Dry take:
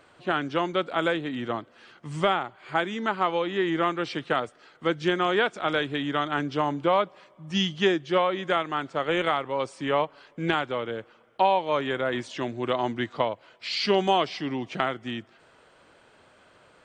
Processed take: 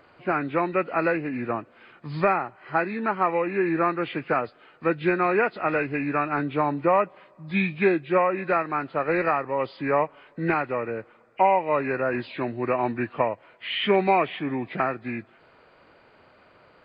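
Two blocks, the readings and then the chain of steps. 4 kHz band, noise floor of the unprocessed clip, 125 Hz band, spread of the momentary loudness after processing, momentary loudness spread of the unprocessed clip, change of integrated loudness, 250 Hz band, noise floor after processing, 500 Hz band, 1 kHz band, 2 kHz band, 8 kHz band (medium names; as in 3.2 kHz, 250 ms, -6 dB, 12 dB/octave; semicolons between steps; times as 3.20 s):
-7.0 dB, -58 dBFS, +2.0 dB, 9 LU, 9 LU, +1.5 dB, +2.0 dB, -57 dBFS, +2.0 dB, +2.0 dB, +1.5 dB, under -30 dB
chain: knee-point frequency compression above 1.4 kHz 1.5:1; trim +2 dB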